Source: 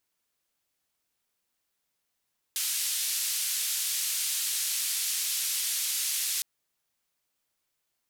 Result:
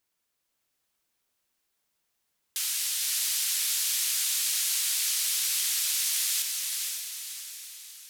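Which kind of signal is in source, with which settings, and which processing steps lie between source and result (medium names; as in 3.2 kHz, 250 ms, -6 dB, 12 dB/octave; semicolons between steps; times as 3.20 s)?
noise band 3–13 kHz, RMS -30 dBFS 3.86 s
echo that smears into a reverb 525 ms, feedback 47%, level -3 dB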